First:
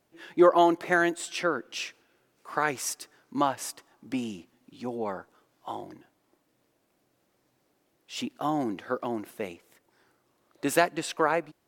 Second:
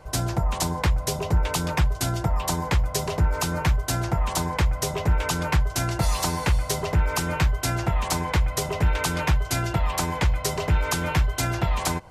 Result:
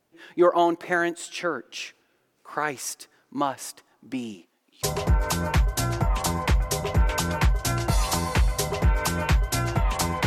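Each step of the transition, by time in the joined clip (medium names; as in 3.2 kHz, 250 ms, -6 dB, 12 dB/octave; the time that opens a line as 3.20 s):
first
4.34–4.83 s: high-pass 230 Hz -> 810 Hz
4.83 s: go over to second from 2.94 s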